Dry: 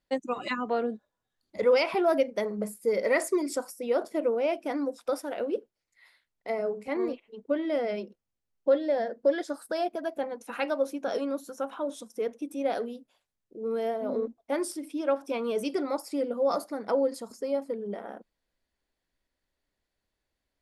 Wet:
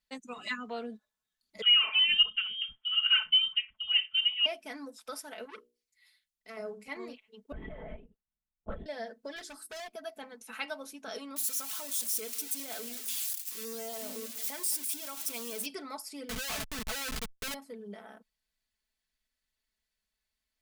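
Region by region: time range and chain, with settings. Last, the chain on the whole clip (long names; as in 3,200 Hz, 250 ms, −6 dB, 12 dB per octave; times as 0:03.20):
0:01.62–0:04.46: voice inversion scrambler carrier 3,400 Hz + three-band delay without the direct sound highs, mids, lows 60/310 ms, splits 330/1,100 Hz
0:05.45–0:06.57: parametric band 1,000 Hz −11 dB 2 octaves + mains-hum notches 60/120/180/240/300/360/420/480/540/600 Hz + saturating transformer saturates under 1,200 Hz
0:07.52–0:08.86: low-pass filter 1,600 Hz + output level in coarse steps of 11 dB + linear-prediction vocoder at 8 kHz whisper
0:09.36–0:09.88: mains-hum notches 50/100/150/200/250/300/350/400 Hz + hard clipping −32.5 dBFS
0:11.36–0:15.66: spike at every zero crossing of −25 dBFS + downward compressor 2 to 1, threshold −31 dBFS + single-tap delay 197 ms −16.5 dB
0:16.29–0:17.54: high-pass filter 180 Hz + comparator with hysteresis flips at −36.5 dBFS
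whole clip: guitar amp tone stack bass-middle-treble 5-5-5; comb filter 4.6 ms; level +6 dB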